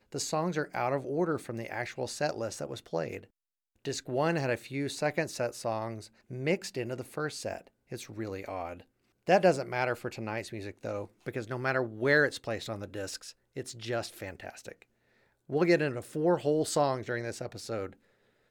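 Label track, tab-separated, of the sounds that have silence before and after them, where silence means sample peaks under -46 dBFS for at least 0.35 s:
3.850000	8.820000	sound
9.270000	14.820000	sound
15.490000	17.930000	sound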